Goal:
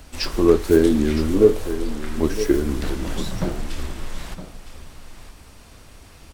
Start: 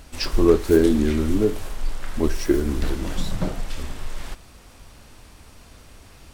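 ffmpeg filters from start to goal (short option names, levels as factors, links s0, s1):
-filter_complex "[0:a]asettb=1/sr,asplit=3[s0][s1][s2];[s0]atrim=end=1.334[s3];[s1]atrim=start=1.33:end=1.98,asetpts=PTS-STARTPTS,afade=t=in:d=0.004:c=qsin,afade=t=out:st=0.646:d=0.004:c=qsin,equalizer=f=470:t=o:w=0.31:g=14[s4];[s2]atrim=start=1.976[s5];[s3][s4]acrossfade=d=0.004:c1=hsin:c2=qsin[s6];[s6][s5]acrossfade=d=0.004:c1=qsin:c2=hsin,acrossover=split=100|1100|4300[s7][s8][s9][s10];[s7]alimiter=limit=0.0794:level=0:latency=1[s11];[s11][s8][s9][s10]amix=inputs=4:normalize=0,aecho=1:1:963:0.237,volume=1.12"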